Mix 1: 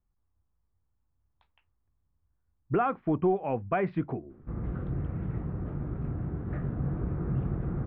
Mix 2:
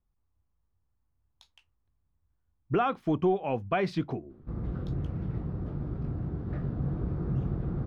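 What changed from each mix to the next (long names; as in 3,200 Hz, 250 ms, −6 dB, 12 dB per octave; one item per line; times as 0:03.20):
background: add low-pass filter 1,300 Hz 6 dB per octave
master: remove low-pass filter 2,200 Hz 24 dB per octave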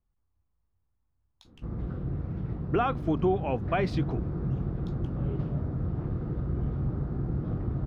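background: entry −2.85 s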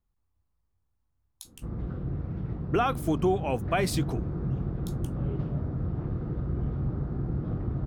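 speech: remove high-frequency loss of the air 250 metres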